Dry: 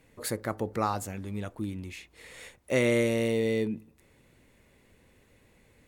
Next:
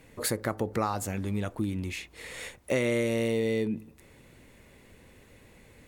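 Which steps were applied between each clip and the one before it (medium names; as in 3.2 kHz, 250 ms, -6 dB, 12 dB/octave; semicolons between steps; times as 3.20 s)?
compression 3:1, threshold -33 dBFS, peak gain reduction 9.5 dB; trim +6.5 dB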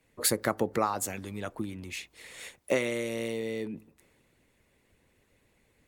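bass shelf 130 Hz -7.5 dB; harmonic-percussive split harmonic -7 dB; three bands expanded up and down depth 40%; trim +1.5 dB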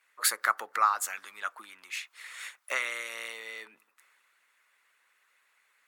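resonant high-pass 1.3 kHz, resonance Q 3.1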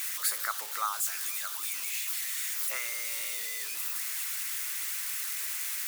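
zero-crossing glitches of -18 dBFS; trim -8 dB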